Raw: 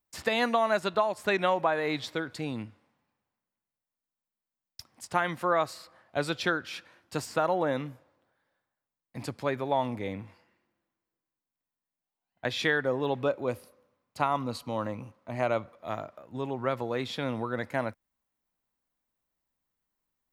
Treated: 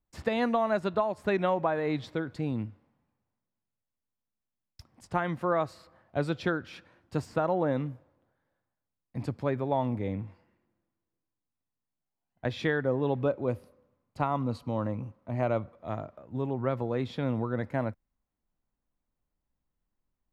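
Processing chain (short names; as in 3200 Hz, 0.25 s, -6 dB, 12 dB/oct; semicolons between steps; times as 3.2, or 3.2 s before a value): tilt -3 dB/oct; gain -3 dB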